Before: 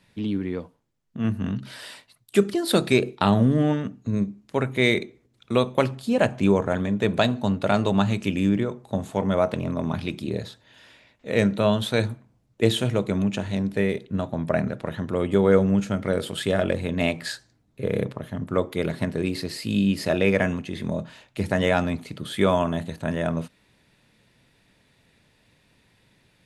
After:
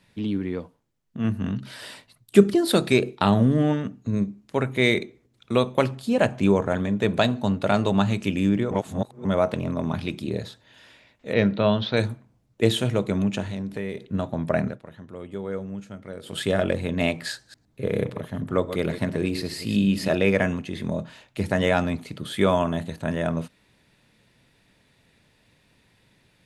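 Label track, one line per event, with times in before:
1.810000	2.710000	low-shelf EQ 440 Hz +7.5 dB
8.710000	9.250000	reverse
11.330000	11.970000	Butterworth low-pass 5,200 Hz 48 dB per octave
13.440000	14.050000	downward compressor 2.5 to 1, threshold −29 dBFS
14.660000	16.370000	duck −13.5 dB, fades 0.14 s
17.320000	20.150000	delay that plays each chunk backwards 111 ms, level −10.5 dB

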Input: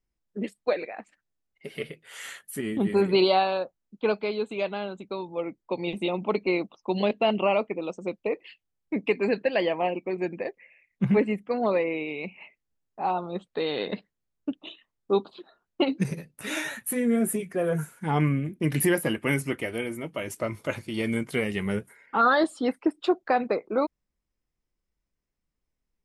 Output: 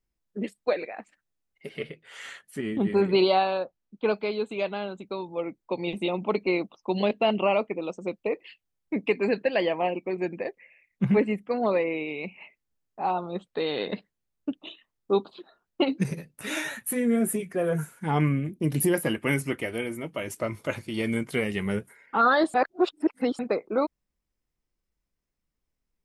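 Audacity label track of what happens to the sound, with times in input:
1.690000	4.120000	high-frequency loss of the air 71 metres
18.500000	18.940000	parametric band 1,800 Hz −11.5 dB 1.2 octaves
22.540000	23.390000	reverse

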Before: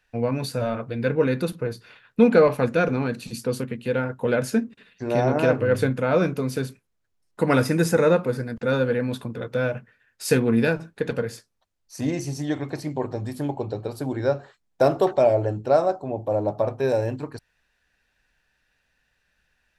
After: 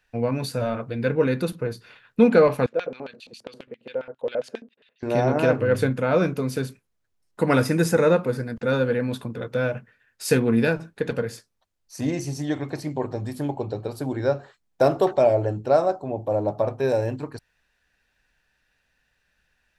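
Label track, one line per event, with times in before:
2.660000	5.030000	auto-filter band-pass square 7.4 Hz 550–3,300 Hz

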